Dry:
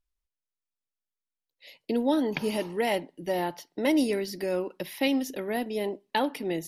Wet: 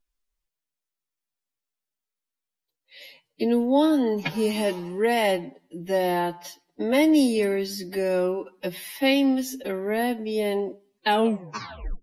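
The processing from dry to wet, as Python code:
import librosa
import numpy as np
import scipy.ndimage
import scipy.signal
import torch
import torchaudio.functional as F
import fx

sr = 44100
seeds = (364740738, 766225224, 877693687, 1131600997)

y = fx.tape_stop_end(x, sr, length_s=0.53)
y = fx.stretch_vocoder(y, sr, factor=1.8)
y = F.gain(torch.from_numpy(y), 4.5).numpy()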